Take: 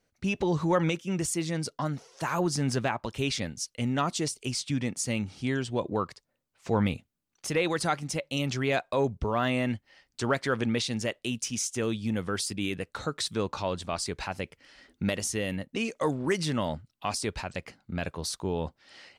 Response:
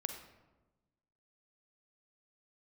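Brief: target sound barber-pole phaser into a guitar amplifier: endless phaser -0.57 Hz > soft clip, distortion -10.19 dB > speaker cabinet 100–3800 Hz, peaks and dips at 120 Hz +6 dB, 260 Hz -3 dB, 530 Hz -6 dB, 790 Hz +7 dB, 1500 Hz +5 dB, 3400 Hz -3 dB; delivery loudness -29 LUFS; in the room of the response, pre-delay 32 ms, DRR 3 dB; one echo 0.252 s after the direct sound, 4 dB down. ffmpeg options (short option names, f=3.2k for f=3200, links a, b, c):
-filter_complex "[0:a]aecho=1:1:252:0.631,asplit=2[a][b];[1:a]atrim=start_sample=2205,adelay=32[c];[b][c]afir=irnorm=-1:irlink=0,volume=-3dB[d];[a][d]amix=inputs=2:normalize=0,asplit=2[e][f];[f]afreqshift=-0.57[g];[e][g]amix=inputs=2:normalize=1,asoftclip=threshold=-28.5dB,highpass=100,equalizer=f=120:t=q:w=4:g=6,equalizer=f=260:t=q:w=4:g=-3,equalizer=f=530:t=q:w=4:g=-6,equalizer=f=790:t=q:w=4:g=7,equalizer=f=1.5k:t=q:w=4:g=5,equalizer=f=3.4k:t=q:w=4:g=-3,lowpass=f=3.8k:w=0.5412,lowpass=f=3.8k:w=1.3066,volume=5.5dB"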